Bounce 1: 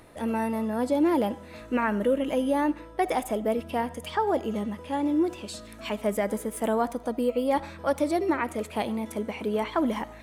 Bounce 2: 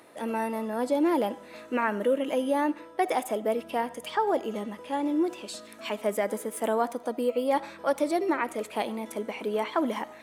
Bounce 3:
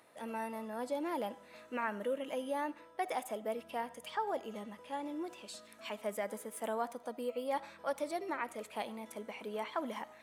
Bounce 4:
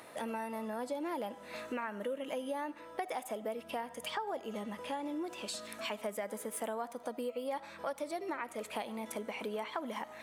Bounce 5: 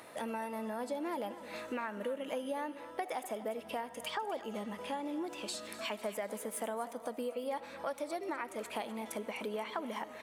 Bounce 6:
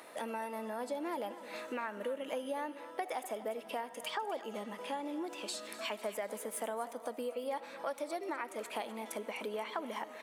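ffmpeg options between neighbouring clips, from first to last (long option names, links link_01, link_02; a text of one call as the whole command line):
ffmpeg -i in.wav -af "highpass=270" out.wav
ffmpeg -i in.wav -af "equalizer=frequency=330:width_type=o:width=0.9:gain=-7,volume=-8.5dB" out.wav
ffmpeg -i in.wav -af "acompressor=threshold=-49dB:ratio=4,volume=11.5dB" out.wav
ffmpeg -i in.wav -af "aecho=1:1:251|502|753|1004:0.178|0.0854|0.041|0.0197" out.wav
ffmpeg -i in.wav -af "highpass=240" out.wav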